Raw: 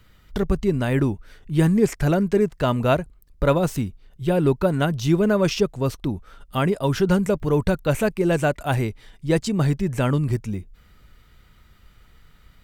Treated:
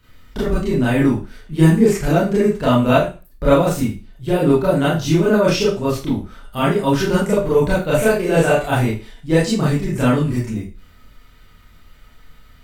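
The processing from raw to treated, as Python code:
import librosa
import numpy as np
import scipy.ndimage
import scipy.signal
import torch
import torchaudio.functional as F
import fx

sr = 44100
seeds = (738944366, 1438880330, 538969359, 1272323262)

y = fx.doubler(x, sr, ms=30.0, db=-3.0, at=(7.96, 8.64))
y = fx.rev_schroeder(y, sr, rt60_s=0.32, comb_ms=25, drr_db=-8.5)
y = y * 10.0 ** (-3.5 / 20.0)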